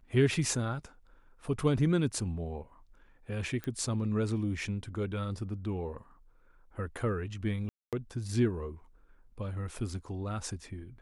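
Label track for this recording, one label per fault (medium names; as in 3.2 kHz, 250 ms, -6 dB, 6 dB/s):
3.640000	3.640000	pop -23 dBFS
7.690000	7.930000	dropout 237 ms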